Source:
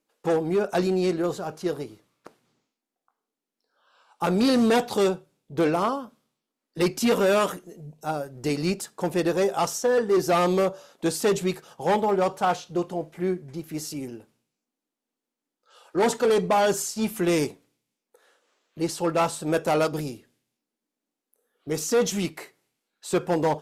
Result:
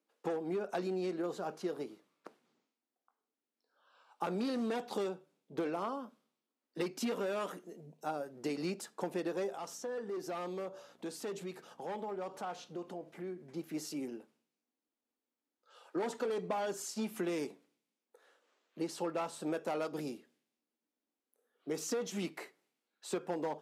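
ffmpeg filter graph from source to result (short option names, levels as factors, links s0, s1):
-filter_complex "[0:a]asettb=1/sr,asplit=3[s0][s1][s2];[s0]atrim=end=9.554[s3];[s1]atrim=start=9.55:end=13.41,asetpts=PTS-STARTPTS,afade=t=in:d=0.004:c=qsin,afade=t=out:st=3.856:d=0.004:c=qsin,acompressor=threshold=0.0158:ratio=3:attack=3.2:release=140:knee=1:detection=peak,aeval=exprs='val(0)+0.00158*(sin(2*PI*60*n/s)+sin(2*PI*2*60*n/s)/2+sin(2*PI*3*60*n/s)/3+sin(2*PI*4*60*n/s)/4+sin(2*PI*5*60*n/s)/5)':c=same[s4];[s2]atrim=start=13.406[s5];[s3][s4]acrossfade=d=0.004:c1=hsin:c2=qsin[s6];[s6][s5]acrossfade=d=0.004:c1=qsin:c2=hsin,highpass=f=190:w=0.5412,highpass=f=190:w=1.3066,highshelf=f=5400:g=-7.5,acompressor=threshold=0.0398:ratio=6,volume=0.562"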